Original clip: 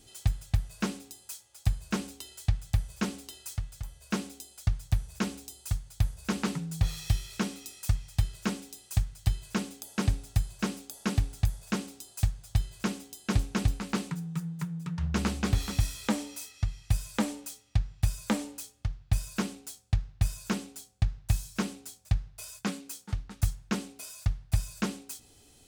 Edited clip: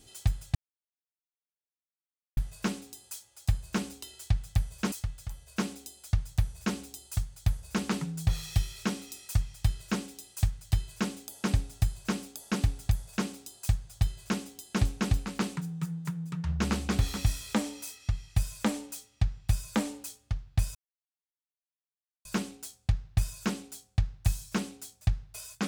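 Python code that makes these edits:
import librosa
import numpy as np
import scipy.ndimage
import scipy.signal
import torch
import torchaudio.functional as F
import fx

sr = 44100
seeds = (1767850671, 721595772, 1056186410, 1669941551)

y = fx.edit(x, sr, fx.insert_silence(at_s=0.55, length_s=1.82),
    fx.cut(start_s=3.1, length_s=0.36),
    fx.insert_silence(at_s=19.29, length_s=1.5), tone=tone)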